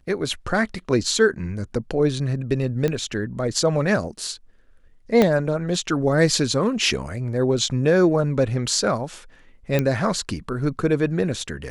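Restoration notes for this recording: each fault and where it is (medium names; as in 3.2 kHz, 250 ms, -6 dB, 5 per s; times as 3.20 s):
2.88 s: pop -12 dBFS
5.22 s: pop -5 dBFS
9.79 s: pop -8 dBFS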